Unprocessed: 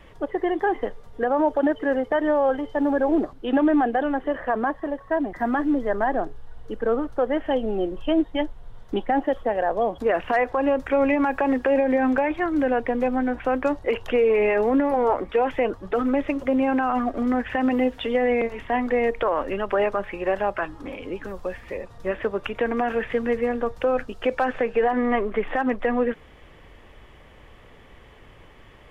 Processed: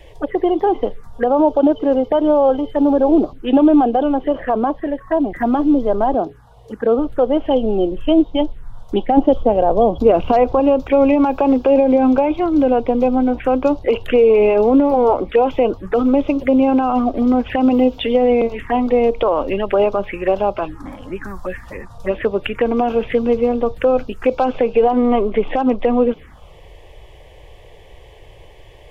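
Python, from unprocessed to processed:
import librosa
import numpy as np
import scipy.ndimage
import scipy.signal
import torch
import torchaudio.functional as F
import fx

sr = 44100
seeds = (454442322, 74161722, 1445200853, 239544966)

y = fx.highpass(x, sr, hz=87.0, slope=12, at=(6.14, 6.99))
y = fx.low_shelf(y, sr, hz=300.0, db=8.5, at=(9.17, 10.6))
y = fx.env_phaser(y, sr, low_hz=200.0, high_hz=1800.0, full_db=-21.5)
y = y * librosa.db_to_amplitude(8.5)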